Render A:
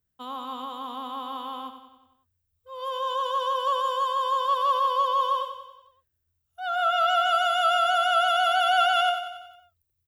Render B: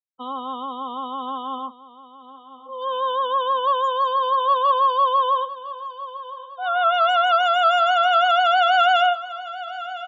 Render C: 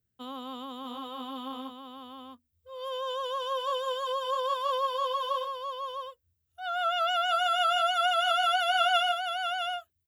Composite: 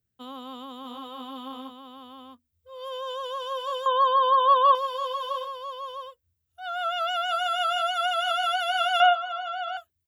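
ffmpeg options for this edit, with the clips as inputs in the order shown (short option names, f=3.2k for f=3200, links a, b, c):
-filter_complex "[1:a]asplit=2[a][b];[2:a]asplit=3[c][d][e];[c]atrim=end=3.862[f];[a]atrim=start=3.858:end=4.752[g];[d]atrim=start=4.748:end=9.002[h];[b]atrim=start=8.998:end=9.772[i];[e]atrim=start=9.768[j];[f][g]acrossfade=d=0.004:c1=hsin:c2=hsin[k];[k][h]acrossfade=d=0.004:c1=hsin:c2=hsin[l];[l][i]acrossfade=d=0.004:c1=hsin:c2=hsin[m];[m][j]acrossfade=d=0.004:c1=hsin:c2=hsin"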